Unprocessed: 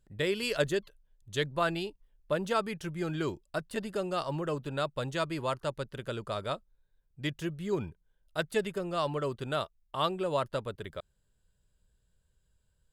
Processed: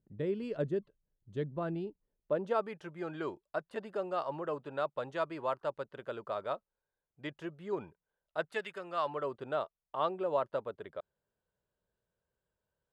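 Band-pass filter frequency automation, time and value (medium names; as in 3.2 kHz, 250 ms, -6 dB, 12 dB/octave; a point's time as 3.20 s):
band-pass filter, Q 0.86
1.84 s 230 Hz
2.77 s 790 Hz
8.42 s 790 Hz
8.66 s 1.9 kHz
9.38 s 680 Hz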